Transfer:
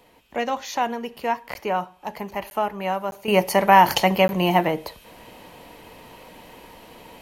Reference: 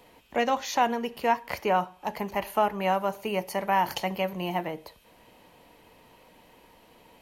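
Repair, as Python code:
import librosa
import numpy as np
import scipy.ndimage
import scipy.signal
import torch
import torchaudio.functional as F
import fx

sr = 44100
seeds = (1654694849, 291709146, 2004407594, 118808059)

y = fx.fix_interpolate(x, sr, at_s=(1.54, 2.5, 3.11, 4.28), length_ms=11.0)
y = fx.gain(y, sr, db=fx.steps((0.0, 0.0), (3.28, -11.0)))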